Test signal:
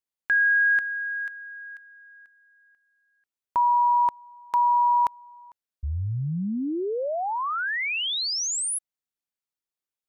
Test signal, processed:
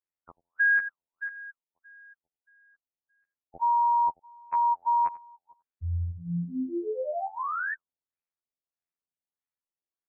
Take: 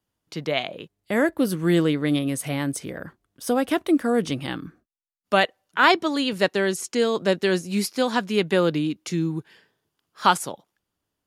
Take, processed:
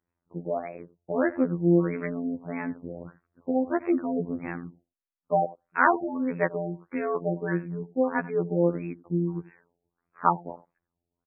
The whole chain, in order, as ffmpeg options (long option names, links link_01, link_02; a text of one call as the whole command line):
ffmpeg -i in.wav -af "aecho=1:1:90:0.119,afftfilt=real='hypot(re,im)*cos(PI*b)':imag='0':win_size=2048:overlap=0.75,afftfilt=real='re*lt(b*sr/1024,840*pow(2700/840,0.5+0.5*sin(2*PI*1.6*pts/sr)))':imag='im*lt(b*sr/1024,840*pow(2700/840,0.5+0.5*sin(2*PI*1.6*pts/sr)))':win_size=1024:overlap=0.75" out.wav